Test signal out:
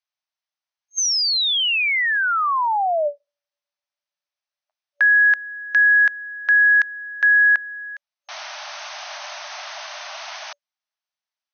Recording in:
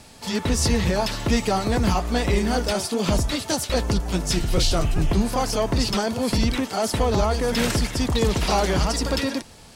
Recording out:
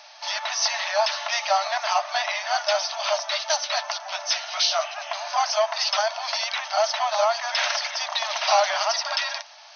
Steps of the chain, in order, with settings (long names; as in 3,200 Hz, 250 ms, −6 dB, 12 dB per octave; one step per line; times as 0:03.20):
brick-wall band-pass 580–6,400 Hz
level +3.5 dB